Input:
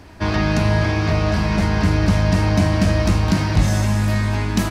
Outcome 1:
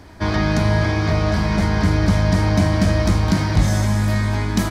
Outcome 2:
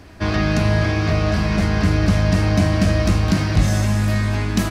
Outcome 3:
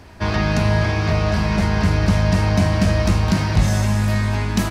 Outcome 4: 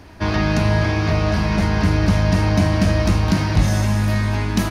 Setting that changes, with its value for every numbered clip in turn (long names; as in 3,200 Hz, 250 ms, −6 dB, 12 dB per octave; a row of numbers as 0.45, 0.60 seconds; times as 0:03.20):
notch filter, centre frequency: 2,700, 910, 300, 7,700 Hertz